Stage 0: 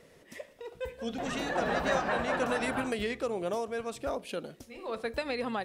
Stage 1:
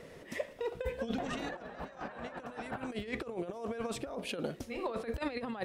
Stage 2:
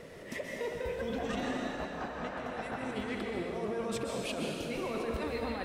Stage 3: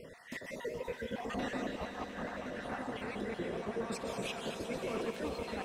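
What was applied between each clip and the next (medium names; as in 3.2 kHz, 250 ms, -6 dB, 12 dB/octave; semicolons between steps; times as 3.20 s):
treble shelf 4 kHz -7 dB; compressor with a negative ratio -38 dBFS, ratio -0.5; trim +1 dB
peak limiter -31 dBFS, peak gain reduction 8.5 dB; plate-style reverb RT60 2.1 s, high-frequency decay 1×, pre-delay 115 ms, DRR -0.5 dB; trim +2 dB
random holes in the spectrogram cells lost 38%; echo with a slow build-up 88 ms, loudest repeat 8, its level -17 dB; trim -1.5 dB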